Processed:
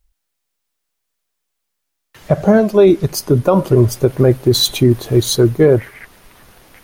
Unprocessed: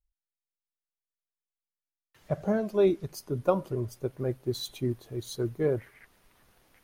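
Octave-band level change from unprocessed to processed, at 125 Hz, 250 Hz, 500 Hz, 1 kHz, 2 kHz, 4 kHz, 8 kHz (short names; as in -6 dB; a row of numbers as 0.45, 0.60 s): +19.0, +17.5, +15.5, +14.0, +17.0, +22.5, +22.0 dB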